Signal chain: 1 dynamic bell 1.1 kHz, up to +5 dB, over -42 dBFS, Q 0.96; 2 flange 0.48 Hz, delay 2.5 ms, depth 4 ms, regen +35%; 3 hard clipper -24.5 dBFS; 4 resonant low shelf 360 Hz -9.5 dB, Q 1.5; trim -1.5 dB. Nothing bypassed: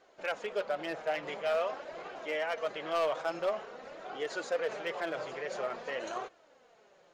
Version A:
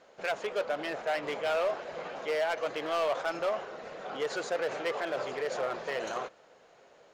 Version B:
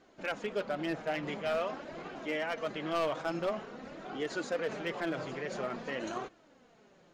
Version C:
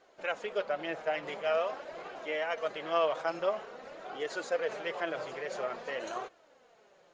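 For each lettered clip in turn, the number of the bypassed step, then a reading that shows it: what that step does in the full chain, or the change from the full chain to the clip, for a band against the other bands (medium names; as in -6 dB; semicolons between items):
2, 8 kHz band +1.5 dB; 4, 125 Hz band +11.0 dB; 3, distortion -15 dB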